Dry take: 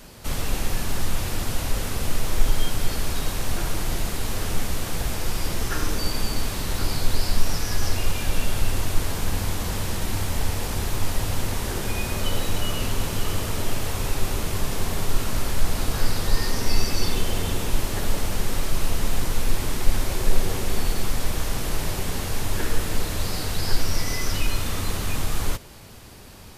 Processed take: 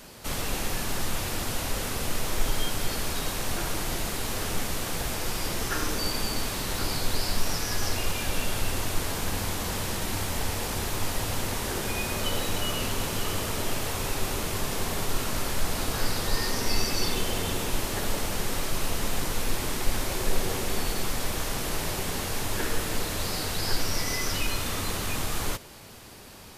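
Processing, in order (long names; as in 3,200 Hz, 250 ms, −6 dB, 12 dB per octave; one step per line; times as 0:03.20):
low-shelf EQ 140 Hz −8.5 dB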